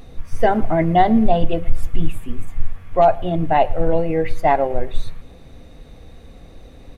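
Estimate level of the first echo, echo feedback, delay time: −22.5 dB, 48%, 112 ms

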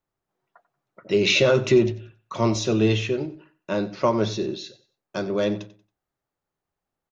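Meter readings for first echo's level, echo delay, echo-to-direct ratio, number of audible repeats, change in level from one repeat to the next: −17.0 dB, 92 ms, −16.5 dB, 2, −11.0 dB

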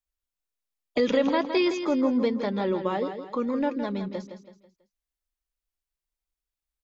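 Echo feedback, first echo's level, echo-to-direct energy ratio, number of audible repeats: 39%, −9.0 dB, −8.5 dB, 4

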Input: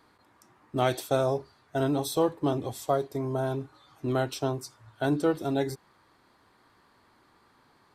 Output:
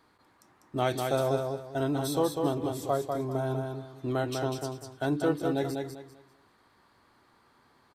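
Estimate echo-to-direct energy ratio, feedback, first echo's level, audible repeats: −4.0 dB, 27%, −4.5 dB, 3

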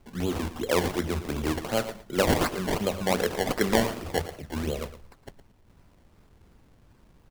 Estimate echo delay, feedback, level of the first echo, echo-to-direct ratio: 113 ms, 16%, −13.5 dB, −13.5 dB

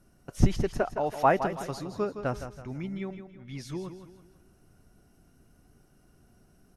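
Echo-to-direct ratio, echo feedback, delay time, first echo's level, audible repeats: −9.5 dB, 40%, 164 ms, −10.0 dB, 4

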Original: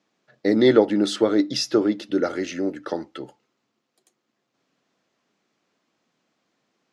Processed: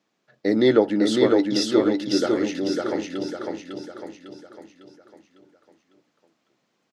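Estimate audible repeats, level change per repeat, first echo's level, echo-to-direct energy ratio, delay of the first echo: 5, −6.5 dB, −3.0 dB, −2.0 dB, 552 ms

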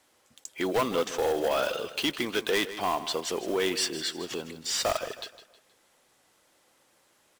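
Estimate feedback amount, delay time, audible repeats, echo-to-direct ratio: 37%, 158 ms, 3, −13.0 dB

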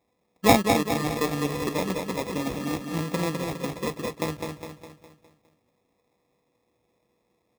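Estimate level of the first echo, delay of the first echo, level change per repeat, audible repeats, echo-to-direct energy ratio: −5.0 dB, 205 ms, −6.5 dB, 5, −4.0 dB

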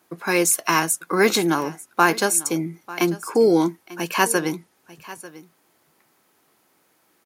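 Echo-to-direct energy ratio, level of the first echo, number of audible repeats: −18.5 dB, −18.5 dB, 1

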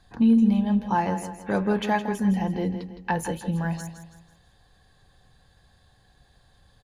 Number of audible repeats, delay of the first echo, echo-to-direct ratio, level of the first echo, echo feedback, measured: 4, 163 ms, −9.5 dB, −10.0 dB, 40%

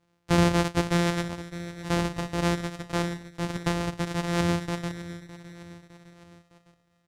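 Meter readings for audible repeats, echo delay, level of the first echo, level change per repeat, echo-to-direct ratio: 3, 609 ms, −15.5 dB, −5.5 dB, −14.0 dB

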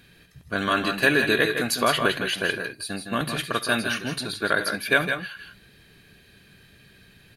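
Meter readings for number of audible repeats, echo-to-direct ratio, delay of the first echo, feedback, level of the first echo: 2, −6.0 dB, 69 ms, repeats not evenly spaced, −19.0 dB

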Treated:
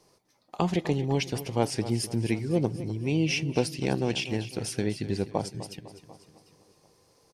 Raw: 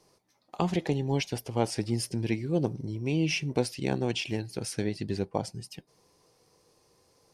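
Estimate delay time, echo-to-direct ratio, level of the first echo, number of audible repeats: 252 ms, −12.5 dB, −14.0 dB, 4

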